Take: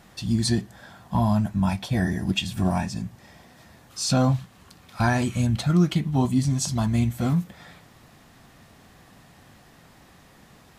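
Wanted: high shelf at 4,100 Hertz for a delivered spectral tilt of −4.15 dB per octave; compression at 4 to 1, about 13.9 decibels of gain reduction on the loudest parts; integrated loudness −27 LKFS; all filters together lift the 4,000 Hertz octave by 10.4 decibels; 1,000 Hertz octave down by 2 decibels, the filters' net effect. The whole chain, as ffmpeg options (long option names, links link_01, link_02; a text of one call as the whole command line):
ffmpeg -i in.wav -af "equalizer=frequency=1000:width_type=o:gain=-3.5,equalizer=frequency=4000:width_type=o:gain=9,highshelf=frequency=4100:gain=6.5,acompressor=threshold=-30dB:ratio=4,volume=5.5dB" out.wav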